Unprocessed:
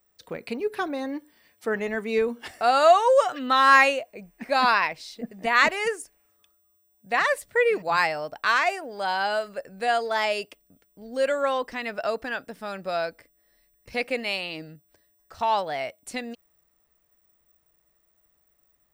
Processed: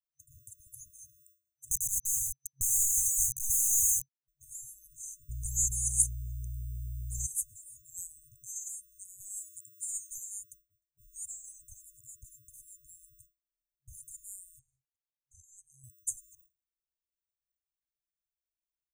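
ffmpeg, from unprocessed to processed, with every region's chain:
ffmpeg -i in.wav -filter_complex "[0:a]asettb=1/sr,asplit=3[link_01][link_02][link_03];[link_01]atrim=end=1.714[link_04];[link_02]atrim=start=1.71:end=4.28,asetpts=PTS-STARTPTS,afade=type=in:duration=0.004:curve=qsin,afade=type=out:start_time=2.566:duration=0.004:curve=qsin,highpass=frequency=120:poles=1,aeval=exprs='val(0)*gte(abs(val(0)),0.0422)':channel_layout=same,acontrast=63[link_05];[link_03]atrim=start=4.276[link_06];[link_04][link_05]acrossfade=duration=0.004:curve1=hsin:curve2=qsin[link_07];[link_07][link_06]acrossfade=duration=0.004:curve1=qsin:curve2=hsin,asettb=1/sr,asplit=3[link_08][link_09][link_10];[link_08]atrim=end=5.294[link_11];[link_09]atrim=start=5.29:end=7.27,asetpts=PTS-STARTPTS,afade=type=in:duration=0.004:curve=qsin,afade=type=out:start_time=1.976:duration=0.004:curve=qsin,acontrast=82,aeval=exprs='val(0)+0.0126*(sin(2*PI*60*n/s)+sin(2*PI*2*60*n/s)/2+sin(2*PI*3*60*n/s)/3+sin(2*PI*4*60*n/s)/4+sin(2*PI*5*60*n/s)/5)':channel_layout=same[link_12];[link_10]atrim=start=7.266[link_13];[link_11][link_12]acrossfade=duration=0.004:curve1=hsin:curve2=qsin[link_14];[link_14][link_13]acrossfade=duration=0.004:curve1=qsin:curve2=hsin,asettb=1/sr,asplit=3[link_15][link_16][link_17];[link_15]atrim=end=9.204[link_18];[link_16]atrim=start=9.2:end=10.18,asetpts=PTS-STARTPTS,afade=type=in:duration=0.004:curve=qsin,afade=type=out:start_time=0.976:duration=0.004:curve=qsin,highpass=190,acontrast=42[link_19];[link_17]atrim=start=10.176[link_20];[link_18][link_19]acrossfade=duration=0.004:curve1=hsin:curve2=qsin[link_21];[link_21][link_20]acrossfade=duration=0.004:curve1=qsin:curve2=hsin,asettb=1/sr,asplit=3[link_22][link_23][link_24];[link_22]atrim=end=14.594[link_25];[link_23]atrim=start=14.59:end=15.84,asetpts=PTS-STARTPTS,afade=type=in:duration=0.004:curve=qsin,afade=type=out:start_time=1.246:duration=0.004:curve=qsin,lowshelf=frequency=210:gain=-10,adynamicsmooth=sensitivity=1:basefreq=8000[link_26];[link_24]atrim=start=15.836[link_27];[link_25][link_26]acrossfade=duration=0.004:curve1=hsin:curve2=qsin[link_28];[link_28][link_27]acrossfade=duration=0.004:curve1=qsin:curve2=hsin,agate=range=-33dB:threshold=-45dB:ratio=3:detection=peak,afftfilt=real='re*(1-between(b*sr/4096,130,6100))':imag='im*(1-between(b*sr/4096,130,6100))':win_size=4096:overlap=0.75,equalizer=frequency=6500:width=0.37:gain=6.5,volume=2.5dB" out.wav

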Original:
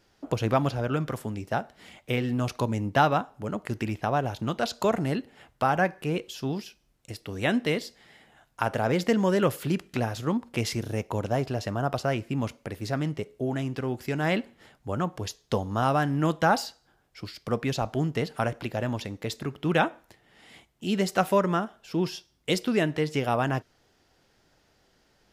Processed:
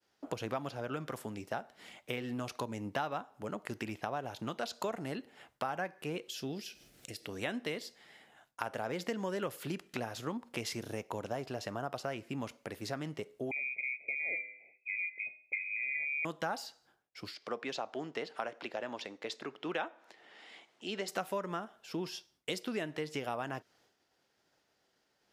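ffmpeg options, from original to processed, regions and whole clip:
ffmpeg -i in.wav -filter_complex "[0:a]asettb=1/sr,asplit=3[link_01][link_02][link_03];[link_01]atrim=end=6.304[link_04];[link_02]atrim=start=6.3:end=7.29,asetpts=PTS-STARTPTS,afade=type=in:duration=0.004:curve=qsin,afade=type=out:start_time=0.986:duration=0.004:curve=qsin,equalizer=frequency=1000:width=2.3:gain=-12,acompressor=mode=upward:threshold=-34dB:ratio=2.5:attack=3.2:release=140:knee=2.83:detection=peak[link_05];[link_03]atrim=start=7.286[link_06];[link_04][link_05]acrossfade=duration=0.004:curve1=hsin:curve2=qsin[link_07];[link_07][link_06]acrossfade=duration=0.004:curve1=qsin:curve2=hsin,asettb=1/sr,asplit=3[link_08][link_09][link_10];[link_08]atrim=end=13.514[link_11];[link_09]atrim=start=13.51:end=16.25,asetpts=PTS-STARTPTS,afade=type=in:duration=0.004:curve=qsin,afade=type=out:start_time=2.736:duration=0.004:curve=qsin,asuperstop=centerf=1100:order=20:qfactor=0.8,bandreject=frequency=110.4:width_type=h:width=4,bandreject=frequency=220.8:width_type=h:width=4,bandreject=frequency=331.2:width_type=h:width=4,bandreject=frequency=441.6:width_type=h:width=4,bandreject=frequency=552:width_type=h:width=4,bandreject=frequency=662.4:width_type=h:width=4,bandreject=frequency=772.8:width_type=h:width=4,bandreject=frequency=883.2:width_type=h:width=4,bandreject=frequency=993.6:width_type=h:width=4,bandreject=frequency=1104:width_type=h:width=4,bandreject=frequency=1214.4:width_type=h:width=4,bandreject=frequency=1324.8:width_type=h:width=4,bandreject=frequency=1435.2:width_type=h:width=4,bandreject=frequency=1545.6:width_type=h:width=4,bandreject=frequency=1656:width_type=h:width=4,bandreject=frequency=1766.4:width_type=h:width=4,bandreject=frequency=1876.8:width_type=h:width=4,bandreject=frequency=1987.2:width_type=h:width=4,bandreject=frequency=2097.6:width_type=h:width=4,bandreject=frequency=2208:width_type=h:width=4,bandreject=frequency=2318.4:width_type=h:width=4,bandreject=frequency=2428.8:width_type=h:width=4,bandreject=frequency=2539.2:width_type=h:width=4,bandreject=frequency=2649.6:width_type=h:width=4,bandreject=frequency=2760:width_type=h:width=4,bandreject=frequency=2870.4:width_type=h:width=4,bandreject=frequency=2980.8:width_type=h:width=4,bandreject=frequency=3091.2:width_type=h:width=4,bandreject=frequency=3201.6:width_type=h:width=4,bandreject=frequency=3312:width_type=h:width=4,bandreject=frequency=3422.4:width_type=h:width=4,bandreject=frequency=3532.8:width_type=h:width=4,bandreject=frequency=3643.2:width_type=h:width=4,bandreject=frequency=3753.6:width_type=h:width=4,bandreject=frequency=3864:width_type=h:width=4,bandreject=frequency=3974.4:width_type=h:width=4,lowpass=frequency=2200:width_type=q:width=0.5098,lowpass=frequency=2200:width_type=q:width=0.6013,lowpass=frequency=2200:width_type=q:width=0.9,lowpass=frequency=2200:width_type=q:width=2.563,afreqshift=-2600[link_12];[link_10]atrim=start=16.246[link_13];[link_11][link_12]acrossfade=duration=0.004:curve1=hsin:curve2=qsin[link_14];[link_14][link_13]acrossfade=duration=0.004:curve1=qsin:curve2=hsin,asettb=1/sr,asplit=3[link_15][link_16][link_17];[link_15]atrim=end=17.344[link_18];[link_16]atrim=start=17.34:end=21.08,asetpts=PTS-STARTPTS,afade=type=in:duration=0.004:curve=qsin,afade=type=out:start_time=3.736:duration=0.004:curve=qsin,acompressor=mode=upward:threshold=-44dB:ratio=2.5:attack=3.2:release=140:knee=2.83:detection=peak,highpass=310,lowpass=5500[link_19];[link_17]atrim=start=21.076[link_20];[link_18][link_19]acrossfade=duration=0.004:curve1=hsin:curve2=qsin[link_21];[link_21][link_20]acrossfade=duration=0.004:curve1=qsin:curve2=hsin,agate=range=-33dB:threshold=-59dB:ratio=3:detection=peak,highpass=frequency=310:poles=1,acompressor=threshold=-32dB:ratio=3,volume=-3dB" out.wav

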